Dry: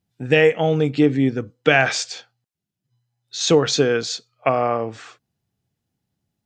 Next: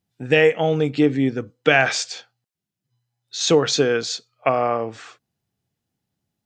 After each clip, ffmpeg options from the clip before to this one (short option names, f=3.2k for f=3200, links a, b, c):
-af "lowshelf=f=180:g=-4.5"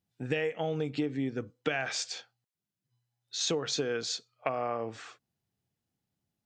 -af "acompressor=threshold=-22dB:ratio=6,volume=-6dB"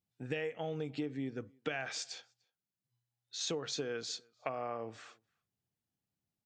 -filter_complex "[0:a]asplit=2[a][b];[b]adelay=297.4,volume=-29dB,highshelf=f=4k:g=-6.69[c];[a][c]amix=inputs=2:normalize=0,volume=-6.5dB"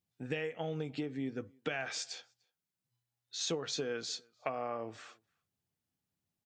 -filter_complex "[0:a]asplit=2[a][b];[b]adelay=12,volume=-12dB[c];[a][c]amix=inputs=2:normalize=0,volume=1dB"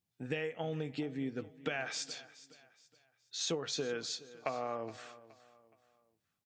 -af "aecho=1:1:420|840|1260:0.126|0.0478|0.0182"